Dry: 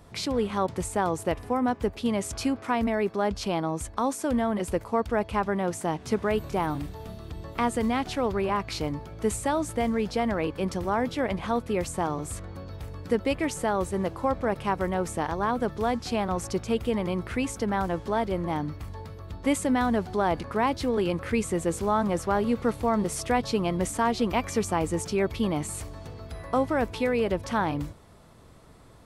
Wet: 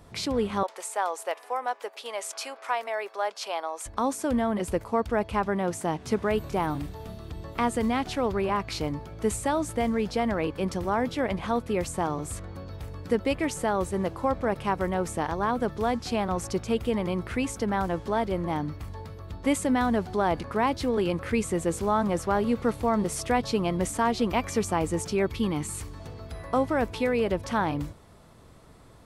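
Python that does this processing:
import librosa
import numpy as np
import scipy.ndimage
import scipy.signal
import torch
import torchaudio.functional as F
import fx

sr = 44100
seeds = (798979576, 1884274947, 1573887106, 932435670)

y = fx.highpass(x, sr, hz=550.0, slope=24, at=(0.63, 3.86))
y = fx.peak_eq(y, sr, hz=640.0, db=-14.0, octaves=0.31, at=(25.26, 26.0))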